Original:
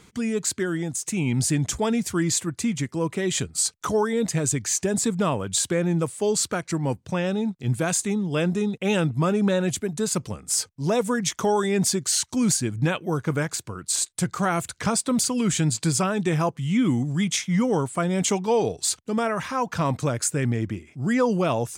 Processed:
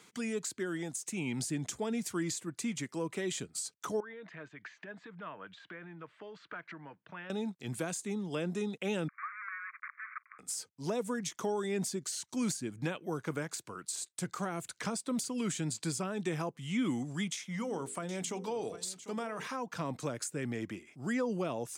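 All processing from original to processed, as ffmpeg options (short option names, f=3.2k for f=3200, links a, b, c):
-filter_complex "[0:a]asettb=1/sr,asplit=3[a][b][c];[a]atrim=end=4.004[d];[b]atrim=start=4:end=7.3,asetpts=PTS-STARTPTS,afade=t=in:d=0.004:c=qsin,afade=t=out:st=3.296:d=0.004:c=qsin,acompressor=threshold=-28dB:ratio=12:attack=3.2:release=140:knee=1:detection=peak,highpass=180,equalizer=f=240:t=q:w=4:g=-10,equalizer=f=390:t=q:w=4:g=-9,equalizer=f=780:t=q:w=4:g=-7,equalizer=f=1.6k:t=q:w=4:g=4,equalizer=f=2.5k:t=q:w=4:g=-3,lowpass=f=2.7k:w=0.5412,lowpass=f=2.7k:w=1.3066,bandreject=f=530:w=5.6[e];[c]atrim=start=7.296[f];[d][e]acrossfade=d=0.004:c1=hsin:c2=qsin[g];[g][f]acrossfade=d=0.004:c1=qsin:c2=hsin,asettb=1/sr,asplit=3[h][i][j];[h]atrim=end=9.084[k];[i]atrim=start=9.08:end=10.39,asetpts=PTS-STARTPTS,afade=t=in:d=0.004:c=qsin,afade=t=out:st=1.306:d=0.004:c=qsin,acrusher=bits=5:dc=4:mix=0:aa=0.000001,asuperpass=centerf=1600:order=20:qfactor=1.3[l];[j]atrim=start=10.386[m];[k][l]acrossfade=d=0.004:c1=hsin:c2=qsin[n];[n][m]acrossfade=d=0.004:c1=qsin:c2=hsin,asettb=1/sr,asplit=3[o][p][q];[o]atrim=end=17.344[r];[p]atrim=start=17.34:end=19.47,asetpts=PTS-STARTPTS,afade=t=in:d=0.004:c=qsin,afade=t=out:st=2.126:d=0.004:c=qsin,bandreject=f=50:t=h:w=6,bandreject=f=100:t=h:w=6,bandreject=f=150:t=h:w=6,bandreject=f=200:t=h:w=6,bandreject=f=250:t=h:w=6,bandreject=f=300:t=h:w=6,bandreject=f=350:t=h:w=6,bandreject=f=400:t=h:w=6,bandreject=f=450:t=h:w=6,bandreject=f=500:t=h:w=6,acompressor=threshold=-25dB:ratio=2:attack=3.2:release=140:knee=1:detection=peak,aecho=1:1:748:0.15,atrim=end_sample=93933[s];[q]atrim=start=19.466[t];[r][s]acrossfade=d=0.004:c1=hsin:c2=qsin[u];[u][t]acrossfade=d=0.004:c1=qsin:c2=hsin,acrossover=split=450[v][w];[w]acompressor=threshold=-33dB:ratio=6[x];[v][x]amix=inputs=2:normalize=0,highpass=170,lowshelf=f=430:g=-7.5,volume=-4dB"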